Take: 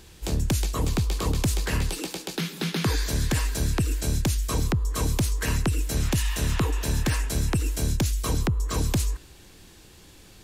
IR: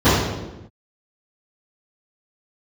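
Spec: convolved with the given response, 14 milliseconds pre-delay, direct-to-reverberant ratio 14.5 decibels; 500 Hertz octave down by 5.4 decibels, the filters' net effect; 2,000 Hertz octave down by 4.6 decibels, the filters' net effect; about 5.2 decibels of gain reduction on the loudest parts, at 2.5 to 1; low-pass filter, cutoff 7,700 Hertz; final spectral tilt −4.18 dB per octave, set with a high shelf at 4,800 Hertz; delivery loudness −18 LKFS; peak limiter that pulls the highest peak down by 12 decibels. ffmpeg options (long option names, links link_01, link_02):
-filter_complex "[0:a]lowpass=7700,equalizer=frequency=500:width_type=o:gain=-7,equalizer=frequency=2000:width_type=o:gain=-7,highshelf=frequency=4800:gain=7,acompressor=threshold=-28dB:ratio=2.5,alimiter=level_in=4.5dB:limit=-24dB:level=0:latency=1,volume=-4.5dB,asplit=2[link_01][link_02];[1:a]atrim=start_sample=2205,adelay=14[link_03];[link_02][link_03]afir=irnorm=-1:irlink=0,volume=-40.5dB[link_04];[link_01][link_04]amix=inputs=2:normalize=0,volume=18.5dB"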